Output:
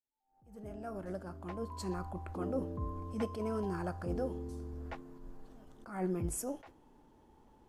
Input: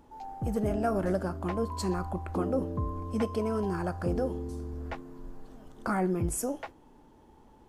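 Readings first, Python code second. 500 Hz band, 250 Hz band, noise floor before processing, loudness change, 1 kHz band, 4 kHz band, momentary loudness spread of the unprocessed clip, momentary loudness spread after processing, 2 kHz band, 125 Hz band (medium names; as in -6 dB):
-8.0 dB, -8.0 dB, -58 dBFS, -7.5 dB, -9.0 dB, -8.0 dB, 13 LU, 17 LU, -9.5 dB, -7.5 dB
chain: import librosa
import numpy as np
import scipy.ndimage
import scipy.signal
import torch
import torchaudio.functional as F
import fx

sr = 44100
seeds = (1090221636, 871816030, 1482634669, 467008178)

y = fx.fade_in_head(x, sr, length_s=2.37)
y = fx.attack_slew(y, sr, db_per_s=110.0)
y = y * 10.0 ** (-5.5 / 20.0)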